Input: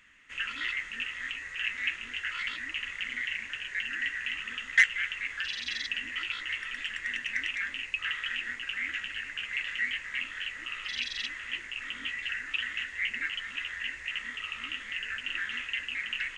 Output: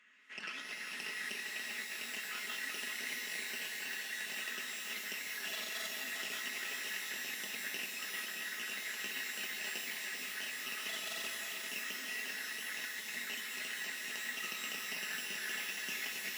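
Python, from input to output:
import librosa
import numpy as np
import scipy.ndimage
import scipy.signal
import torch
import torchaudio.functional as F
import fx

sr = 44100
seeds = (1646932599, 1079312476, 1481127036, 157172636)

y = fx.tracing_dist(x, sr, depth_ms=0.42)
y = scipy.signal.sosfilt(scipy.signal.butter(4, 230.0, 'highpass', fs=sr, output='sos'), y)
y = fx.high_shelf(y, sr, hz=8800.0, db=-9.5)
y = y + 0.56 * np.pad(y, (int(4.7 * sr / 1000.0), 0))[:len(y)]
y = fx.over_compress(y, sr, threshold_db=-35.0, ratio=-0.5)
y = y + 10.0 ** (-6.5 / 20.0) * np.pad(y, (int(396 * sr / 1000.0), 0))[:len(y)]
y = fx.rev_shimmer(y, sr, seeds[0], rt60_s=3.6, semitones=12, shimmer_db=-2, drr_db=5.0)
y = y * 10.0 ** (-8.5 / 20.0)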